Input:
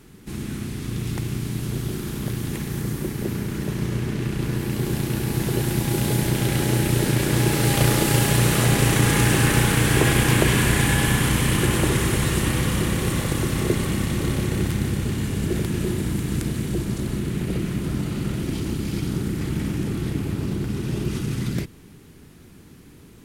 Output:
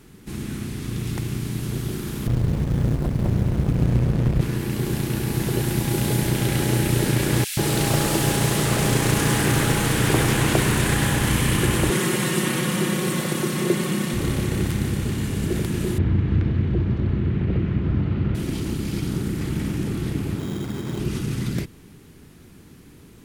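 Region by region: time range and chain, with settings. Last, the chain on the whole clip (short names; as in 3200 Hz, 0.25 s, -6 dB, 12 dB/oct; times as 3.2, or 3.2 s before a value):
2.27–4.41 low shelf 190 Hz +11.5 dB + running maximum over 65 samples
7.44–11.27 notches 60/120/180/240/300/360/420 Hz + bands offset in time highs, lows 0.13 s, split 2200 Hz + Doppler distortion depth 0.37 ms
11.9–14.14 HPF 150 Hz 24 dB/oct + comb 5.5 ms, depth 54%
15.98–18.35 Bessel low-pass 2200 Hz, order 4 + bell 85 Hz +13 dB 0.7 oct
20.39–20.99 HPF 140 Hz 6 dB/oct + sample-rate reducer 3500 Hz
whole clip: dry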